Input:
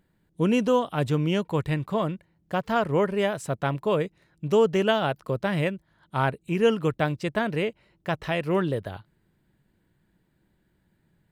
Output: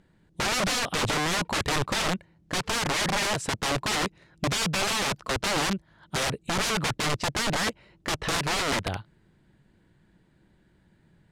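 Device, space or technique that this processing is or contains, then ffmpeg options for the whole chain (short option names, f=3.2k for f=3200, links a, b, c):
overflowing digital effects unit: -af "aeval=exprs='(mod(21.1*val(0)+1,2)-1)/21.1':c=same,lowpass=8.1k,volume=6dB"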